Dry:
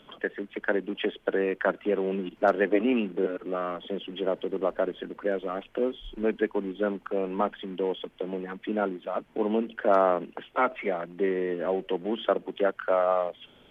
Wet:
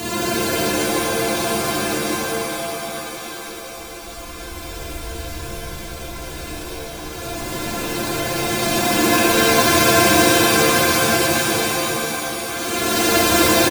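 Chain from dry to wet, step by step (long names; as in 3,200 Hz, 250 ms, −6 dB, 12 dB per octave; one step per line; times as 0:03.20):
samples sorted by size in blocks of 128 samples
high-shelf EQ 2,200 Hz +9.5 dB
in parallel at 0 dB: downward compressor, threshold −32 dBFS, peak gain reduction 17.5 dB
on the sum: extreme stretch with random phases 23×, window 0.05 s, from 0:05.86
on a send: single-tap delay 1,151 ms −3.5 dB
on the sum: reverb with rising layers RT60 3.3 s, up +7 semitones, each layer −2 dB, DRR −8 dB
level −7 dB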